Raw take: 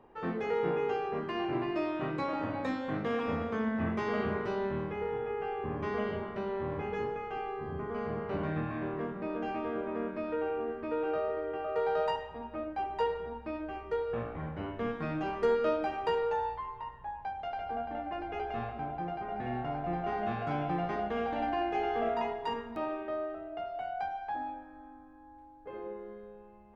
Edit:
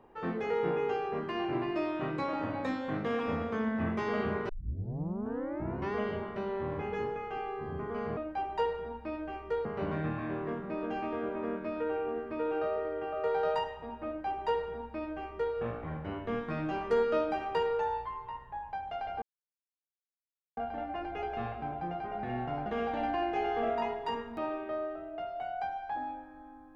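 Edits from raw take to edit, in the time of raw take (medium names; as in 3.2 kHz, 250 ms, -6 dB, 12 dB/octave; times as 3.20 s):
4.49 s: tape start 1.45 s
12.58–14.06 s: copy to 8.17 s
17.74 s: insert silence 1.35 s
19.83–21.05 s: delete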